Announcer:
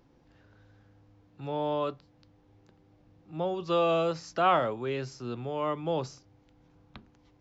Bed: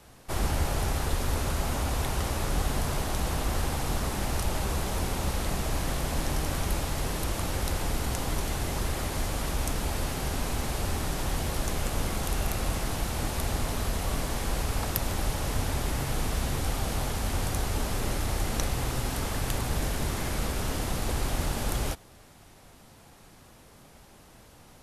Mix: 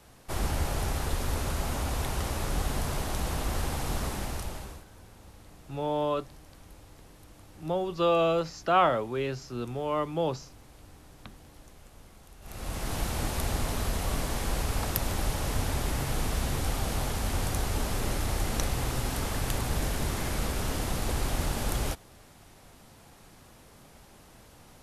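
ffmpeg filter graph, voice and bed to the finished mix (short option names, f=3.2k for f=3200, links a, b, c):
-filter_complex "[0:a]adelay=4300,volume=1.5dB[a];[1:a]volume=20.5dB,afade=t=out:st=4.05:d=0.8:silence=0.0891251,afade=t=in:st=12.41:d=0.59:silence=0.0749894[b];[a][b]amix=inputs=2:normalize=0"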